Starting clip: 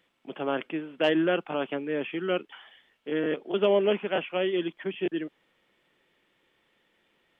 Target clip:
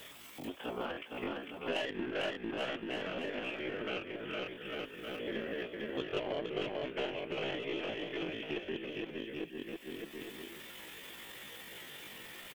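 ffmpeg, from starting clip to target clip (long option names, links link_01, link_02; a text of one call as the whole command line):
ffmpeg -i in.wav -filter_complex "[0:a]afftfilt=real='hypot(re,im)*cos(2*PI*random(0))':imag='hypot(re,im)*sin(2*PI*random(1))':win_size=512:overlap=0.75,acompressor=mode=upward:threshold=-44dB:ratio=2.5,aemphasis=mode=production:type=75fm,aeval=exprs='0.2*(cos(1*acos(clip(val(0)/0.2,-1,1)))-cos(1*PI/2))+0.00158*(cos(2*acos(clip(val(0)/0.2,-1,1)))-cos(2*PI/2))+0.00631*(cos(4*acos(clip(val(0)/0.2,-1,1)))-cos(4*PI/2))+0.00316*(cos(5*acos(clip(val(0)/0.2,-1,1)))-cos(5*PI/2))+0.0141*(cos(7*acos(clip(val(0)/0.2,-1,1)))-cos(7*PI/2))':channel_layout=same,asplit=2[link_01][link_02];[link_02]aecho=0:1:270|499.5|694.6|860.4|1001:0.631|0.398|0.251|0.158|0.1[link_03];[link_01][link_03]amix=inputs=2:normalize=0,adynamicequalizer=threshold=0.00447:dfrequency=2200:dqfactor=1.7:tfrequency=2200:tqfactor=1.7:attack=5:release=100:ratio=0.375:range=2:mode=boostabove:tftype=bell,acompressor=threshold=-50dB:ratio=3,atempo=0.59,volume=10.5dB" out.wav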